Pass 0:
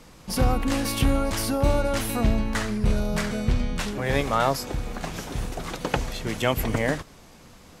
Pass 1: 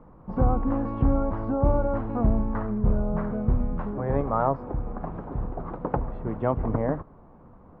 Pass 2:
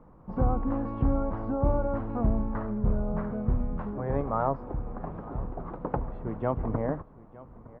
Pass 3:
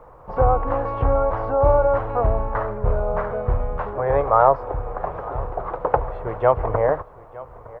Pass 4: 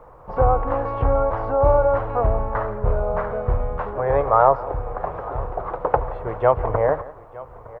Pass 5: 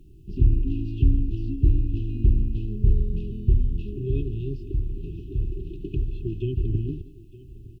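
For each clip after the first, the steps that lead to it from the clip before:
Chebyshev low-pass 1100 Hz, order 3
echo 0.912 s -20 dB; gain -3.5 dB
EQ curve 110 Hz 0 dB, 230 Hz -15 dB, 480 Hz +8 dB; gain +5.5 dB
echo 0.174 s -18.5 dB
brick-wall FIR band-stop 400–2500 Hz; gain +3 dB

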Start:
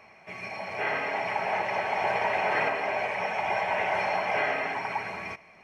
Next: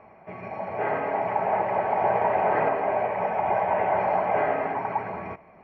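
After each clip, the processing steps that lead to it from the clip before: LPF 1000 Hz 12 dB/oct; gain +6.5 dB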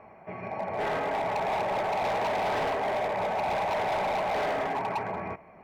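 hard clip -26 dBFS, distortion -8 dB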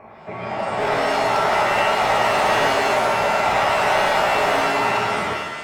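shimmer reverb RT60 1 s, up +7 st, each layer -2 dB, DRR 2.5 dB; gain +6.5 dB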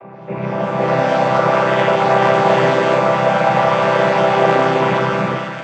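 chord vocoder major triad, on C3; gain +5.5 dB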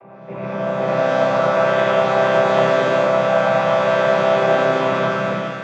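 digital reverb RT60 0.52 s, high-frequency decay 0.5×, pre-delay 35 ms, DRR -2.5 dB; gain -7 dB

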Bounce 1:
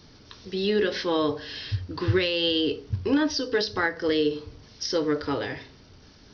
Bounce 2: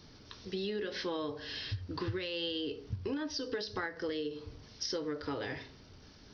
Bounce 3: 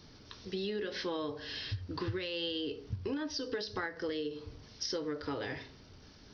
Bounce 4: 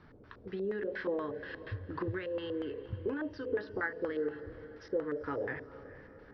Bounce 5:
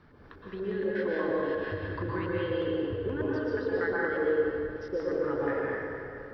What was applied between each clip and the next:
compressor 10:1, threshold -29 dBFS, peak gain reduction 11.5 dB; gain -4 dB
nothing audible
LFO low-pass square 4.2 Hz 530–1600 Hz; diffused feedback echo 0.463 s, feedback 47%, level -15.5 dB; gain -2 dB
plate-style reverb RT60 2.4 s, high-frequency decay 0.65×, pre-delay 0.105 s, DRR -5 dB

